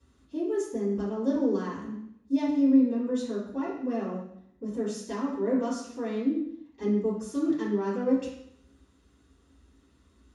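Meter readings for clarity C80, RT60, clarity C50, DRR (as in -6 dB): 7.0 dB, 0.70 s, 3.5 dB, -11.5 dB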